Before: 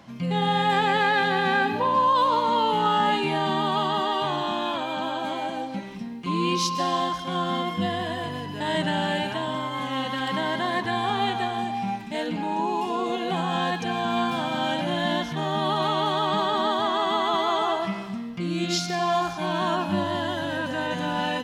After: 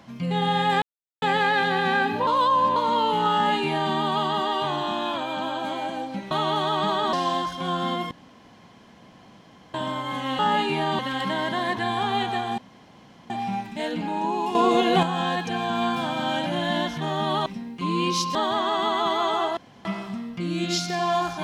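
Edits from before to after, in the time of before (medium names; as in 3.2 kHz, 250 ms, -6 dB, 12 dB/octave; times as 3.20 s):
0.82 s: insert silence 0.40 s
1.87–2.36 s: reverse
2.93–3.53 s: copy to 10.06 s
5.91–6.80 s: swap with 15.81–16.63 s
7.78–9.41 s: room tone
11.65 s: insert room tone 0.72 s
12.90–13.38 s: gain +7.5 dB
17.85 s: insert room tone 0.28 s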